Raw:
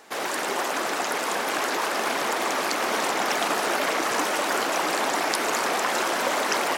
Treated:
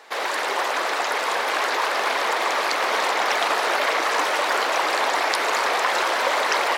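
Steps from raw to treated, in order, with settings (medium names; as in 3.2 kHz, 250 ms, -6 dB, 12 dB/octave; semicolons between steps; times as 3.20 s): graphic EQ 125/250/500/1000/2000/4000 Hz -11/-3/+7/+7/+7/+8 dB; trim -5 dB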